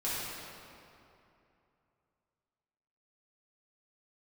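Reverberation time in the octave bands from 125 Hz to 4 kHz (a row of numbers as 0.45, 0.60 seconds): 3.1, 2.9, 2.8, 2.8, 2.3, 1.8 seconds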